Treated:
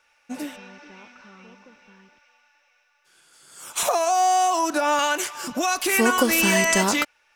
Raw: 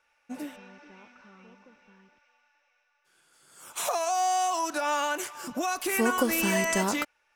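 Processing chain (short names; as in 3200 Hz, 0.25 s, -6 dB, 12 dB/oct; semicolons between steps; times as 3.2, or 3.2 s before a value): bell 5200 Hz +5 dB 2.3 oct, from 3.83 s 280 Hz, from 4.99 s 4100 Hz; gain +5 dB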